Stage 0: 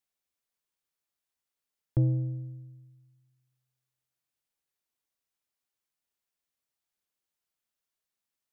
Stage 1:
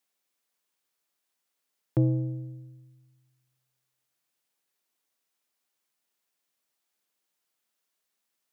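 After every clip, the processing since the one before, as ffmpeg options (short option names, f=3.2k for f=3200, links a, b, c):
-af "highpass=180,volume=7dB"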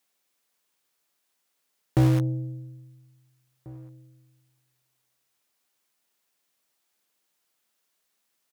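-filter_complex "[0:a]asplit=2[a][b];[b]acrusher=bits=3:mix=0:aa=0.000001,volume=-5dB[c];[a][c]amix=inputs=2:normalize=0,asoftclip=type=tanh:threshold=-19.5dB,asplit=2[d][e];[e]adelay=1691,volume=-23dB,highshelf=f=4k:g=-38[f];[d][f]amix=inputs=2:normalize=0,volume=5.5dB"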